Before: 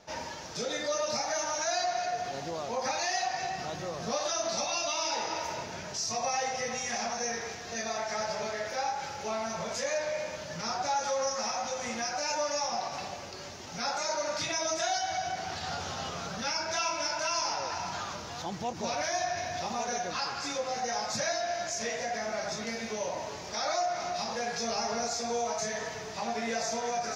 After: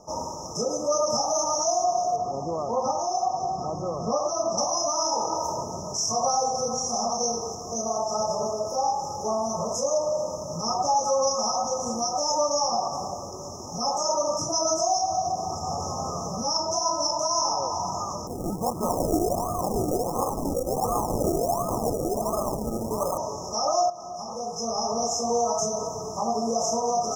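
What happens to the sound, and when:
0:02.16–0:04.58: high-frequency loss of the air 110 metres
0:18.27–0:23.18: sample-and-hold swept by an LFO 33×, swing 60% 1.4 Hz
0:23.90–0:25.26: fade in, from −13.5 dB
whole clip: brick-wall band-stop 1,300–5,100 Hz; level +7.5 dB

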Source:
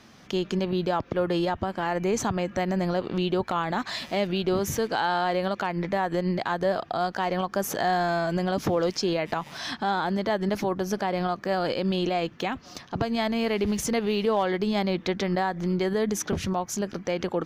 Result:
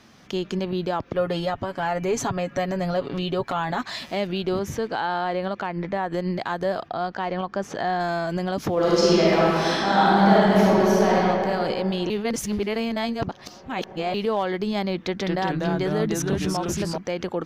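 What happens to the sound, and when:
0:01.15–0:03.81: comb filter 7.2 ms
0:04.59–0:06.13: low-pass filter 3,300 Hz 6 dB per octave
0:06.88–0:08.00: high-frequency loss of the air 120 metres
0:08.73–0:11.16: thrown reverb, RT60 2.9 s, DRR −8 dB
0:12.10–0:14.14: reverse
0:15.00–0:16.98: delay with pitch and tempo change per echo 199 ms, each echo −2 semitones, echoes 2

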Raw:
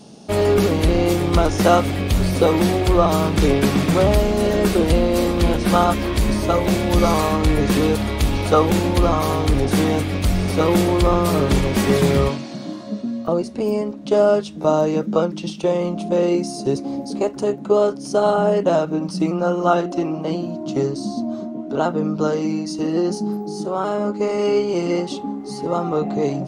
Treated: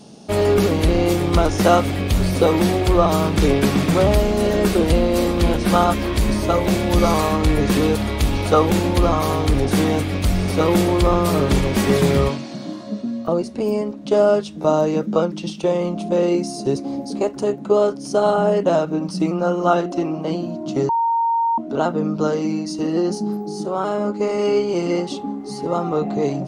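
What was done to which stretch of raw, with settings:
0:20.89–0:21.58: beep over 923 Hz −15.5 dBFS

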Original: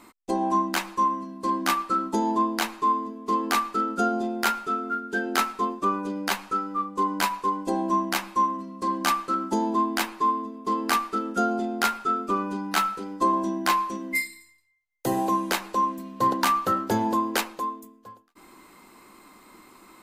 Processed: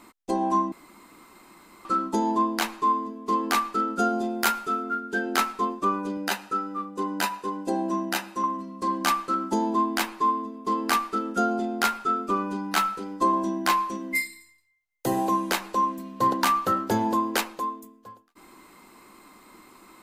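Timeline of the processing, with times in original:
0:00.72–0:01.85: fill with room tone
0:04.00–0:04.83: high-shelf EQ 8,300 Hz +7.5 dB
0:06.17–0:08.44: notch comb filter 1,100 Hz

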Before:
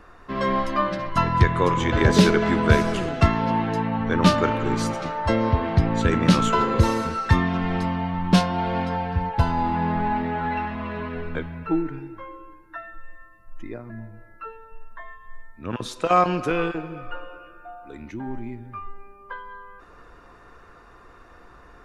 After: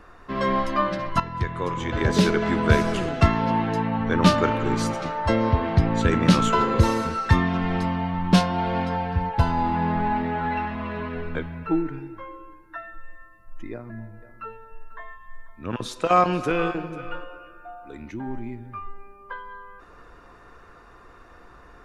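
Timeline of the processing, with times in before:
0:01.20–0:03.00: fade in, from −12 dB
0:13.73–0:17.24: single-tap delay 492 ms −17 dB

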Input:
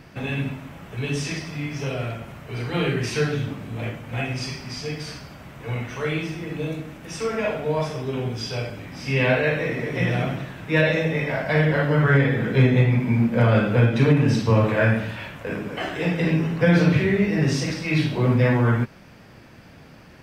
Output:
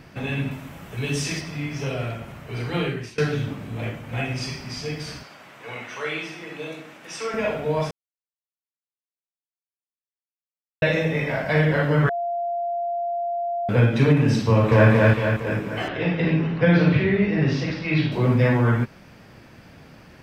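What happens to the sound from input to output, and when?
0:00.51–0:01.41: high-shelf EQ 5,800 Hz +7.5 dB
0:02.74–0:03.18: fade out, to −24 dB
0:05.23–0:07.34: meter weighting curve A
0:07.91–0:10.82: silence
0:12.09–0:13.69: beep over 692 Hz −23 dBFS
0:14.48–0:14.90: delay throw 230 ms, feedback 55%, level −0.5 dB
0:15.88–0:18.12: low-pass filter 4,400 Hz 24 dB per octave

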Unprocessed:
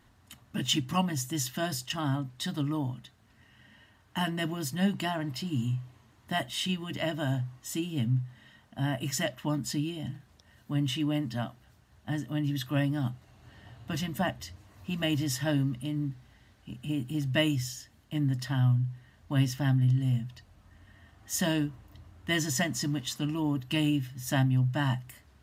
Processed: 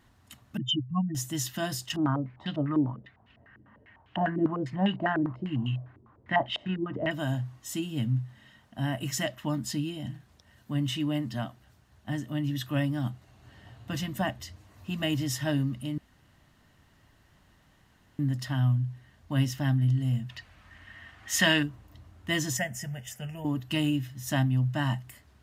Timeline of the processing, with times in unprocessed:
0:00.57–0:01.15: expanding power law on the bin magnitudes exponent 3.2
0:01.96–0:07.11: low-pass on a step sequencer 10 Hz 350–2,900 Hz
0:15.98–0:18.19: fill with room tone
0:20.29–0:21.63: parametric band 2,100 Hz +13.5 dB 2.1 octaves
0:22.57–0:23.45: phaser with its sweep stopped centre 1,100 Hz, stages 6

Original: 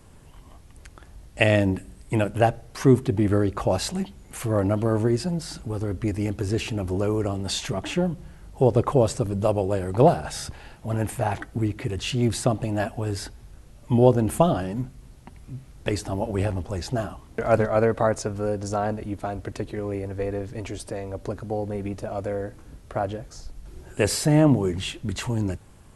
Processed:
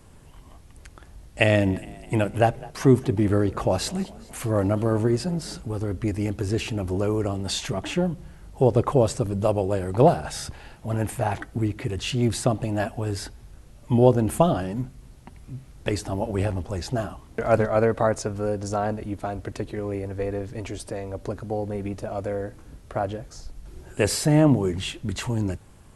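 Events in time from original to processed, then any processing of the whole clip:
0:01.40–0:05.60: echo with shifted repeats 206 ms, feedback 59%, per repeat +32 Hz, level −21.5 dB

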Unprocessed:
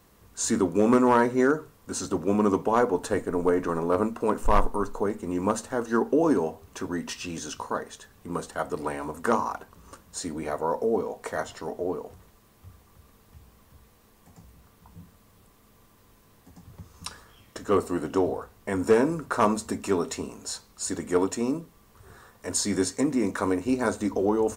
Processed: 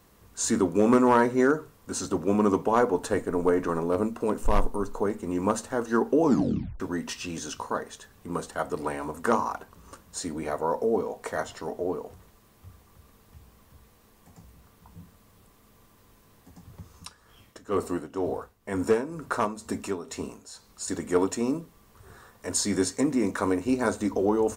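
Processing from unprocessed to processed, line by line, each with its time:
0:03.79–0:04.92: dynamic equaliser 1,200 Hz, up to −6 dB, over −36 dBFS, Q 0.78
0:06.23: tape stop 0.57 s
0:16.92–0:20.88: amplitude tremolo 2.1 Hz, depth 74%

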